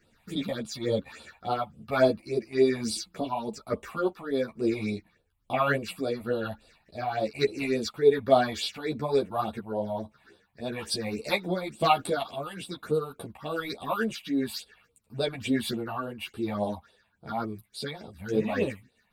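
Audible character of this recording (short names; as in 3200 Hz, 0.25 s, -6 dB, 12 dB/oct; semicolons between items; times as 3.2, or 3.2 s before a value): phasing stages 6, 3.5 Hz, lowest notch 380–1900 Hz; tremolo triangle 1.1 Hz, depth 55%; a shimmering, thickened sound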